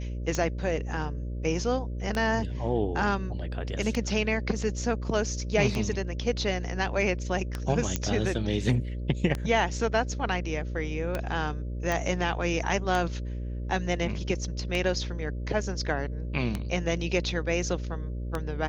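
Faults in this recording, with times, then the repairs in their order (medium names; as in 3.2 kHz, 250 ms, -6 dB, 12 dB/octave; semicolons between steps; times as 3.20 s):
buzz 60 Hz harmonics 10 -33 dBFS
tick 33 1/3 rpm -15 dBFS
7.96 s: pop -12 dBFS
11.92 s: pop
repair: de-click; de-hum 60 Hz, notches 10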